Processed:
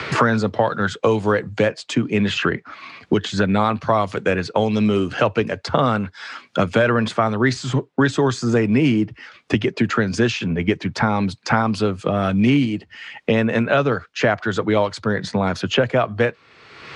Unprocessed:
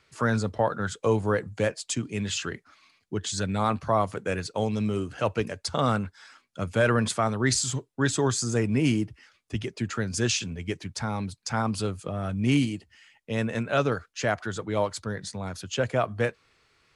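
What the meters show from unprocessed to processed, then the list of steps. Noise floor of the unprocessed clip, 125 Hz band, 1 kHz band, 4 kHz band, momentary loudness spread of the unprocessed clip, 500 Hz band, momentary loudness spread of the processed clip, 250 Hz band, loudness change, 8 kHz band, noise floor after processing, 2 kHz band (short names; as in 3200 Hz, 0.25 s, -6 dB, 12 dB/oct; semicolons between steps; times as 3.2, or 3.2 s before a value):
-69 dBFS, +6.0 dB, +8.5 dB, +6.0 dB, 10 LU, +8.5 dB, 6 LU, +9.5 dB, +8.0 dB, -5.5 dB, -54 dBFS, +9.0 dB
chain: BPF 120–3800 Hz; three-band squash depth 100%; gain +8 dB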